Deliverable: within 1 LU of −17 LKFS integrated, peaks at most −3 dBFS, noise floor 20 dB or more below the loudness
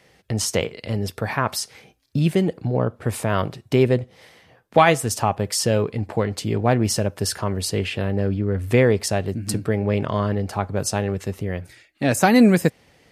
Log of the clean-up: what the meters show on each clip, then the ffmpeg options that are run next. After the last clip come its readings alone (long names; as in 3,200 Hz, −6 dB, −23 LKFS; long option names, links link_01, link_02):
integrated loudness −22.0 LKFS; sample peak −4.5 dBFS; target loudness −17.0 LKFS
→ -af "volume=5dB,alimiter=limit=-3dB:level=0:latency=1"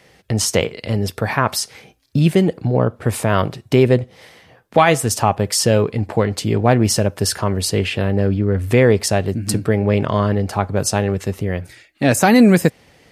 integrated loudness −17.5 LKFS; sample peak −3.0 dBFS; background noise floor −52 dBFS